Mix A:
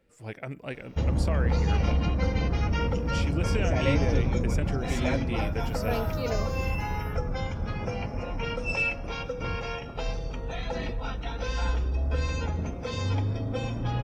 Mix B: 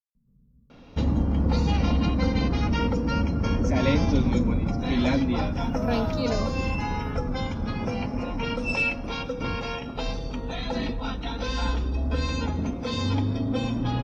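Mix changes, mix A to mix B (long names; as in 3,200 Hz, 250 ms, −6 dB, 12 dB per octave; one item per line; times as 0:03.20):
speech: muted
second sound: add spectral tilt −4 dB per octave
master: add graphic EQ with 15 bands 250 Hz +11 dB, 1,000 Hz +4 dB, 4,000 Hz +8 dB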